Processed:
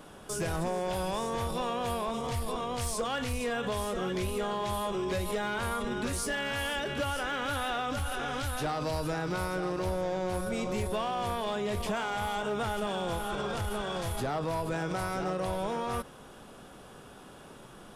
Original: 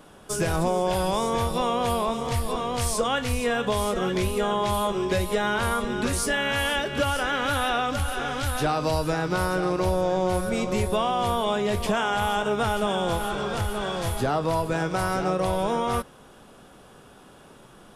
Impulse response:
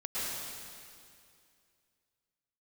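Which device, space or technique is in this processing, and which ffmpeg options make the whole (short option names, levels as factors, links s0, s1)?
clipper into limiter: -af "asoftclip=type=hard:threshold=0.119,alimiter=level_in=1.19:limit=0.0631:level=0:latency=1:release=42,volume=0.841"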